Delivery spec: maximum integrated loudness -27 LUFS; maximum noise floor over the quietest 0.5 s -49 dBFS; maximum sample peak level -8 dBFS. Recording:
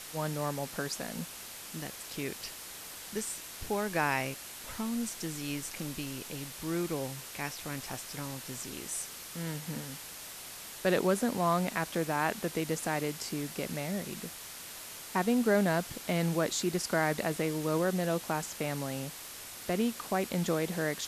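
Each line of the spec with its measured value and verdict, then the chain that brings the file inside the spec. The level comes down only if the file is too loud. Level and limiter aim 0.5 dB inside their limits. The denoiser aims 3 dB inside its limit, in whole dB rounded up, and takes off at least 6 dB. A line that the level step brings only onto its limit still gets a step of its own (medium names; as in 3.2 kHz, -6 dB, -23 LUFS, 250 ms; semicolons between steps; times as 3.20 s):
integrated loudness -33.5 LUFS: pass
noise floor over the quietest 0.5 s -45 dBFS: fail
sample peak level -15.5 dBFS: pass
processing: noise reduction 7 dB, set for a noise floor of -45 dBFS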